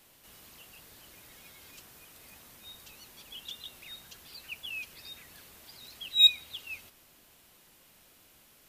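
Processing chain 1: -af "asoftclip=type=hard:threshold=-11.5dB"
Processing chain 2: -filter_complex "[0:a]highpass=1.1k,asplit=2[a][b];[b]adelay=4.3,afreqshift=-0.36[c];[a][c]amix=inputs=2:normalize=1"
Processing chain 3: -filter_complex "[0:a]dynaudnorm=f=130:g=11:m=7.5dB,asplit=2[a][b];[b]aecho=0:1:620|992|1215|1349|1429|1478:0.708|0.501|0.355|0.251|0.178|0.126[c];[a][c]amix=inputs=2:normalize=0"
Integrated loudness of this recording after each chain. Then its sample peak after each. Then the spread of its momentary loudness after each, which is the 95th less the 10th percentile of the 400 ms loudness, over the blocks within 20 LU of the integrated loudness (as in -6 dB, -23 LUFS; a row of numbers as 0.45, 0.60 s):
-26.5, -28.5, -20.5 LUFS; -11.5, -11.5, -3.5 dBFS; 26, 25, 25 LU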